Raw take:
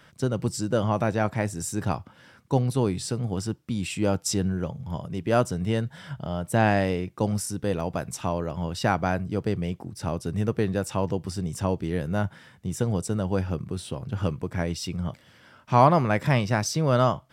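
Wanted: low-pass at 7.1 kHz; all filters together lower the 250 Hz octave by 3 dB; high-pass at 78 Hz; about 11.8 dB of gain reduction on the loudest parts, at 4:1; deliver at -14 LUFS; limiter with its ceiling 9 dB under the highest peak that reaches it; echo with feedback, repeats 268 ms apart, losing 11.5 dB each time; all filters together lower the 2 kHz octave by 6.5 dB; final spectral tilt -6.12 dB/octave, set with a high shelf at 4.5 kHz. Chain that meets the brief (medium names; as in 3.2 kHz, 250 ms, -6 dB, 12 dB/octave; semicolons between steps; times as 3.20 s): high-pass 78 Hz; low-pass 7.1 kHz; peaking EQ 250 Hz -4 dB; peaking EQ 2 kHz -8 dB; treble shelf 4.5 kHz -5 dB; compression 4:1, threshold -27 dBFS; peak limiter -23.5 dBFS; feedback delay 268 ms, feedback 27%, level -11.5 dB; trim +21 dB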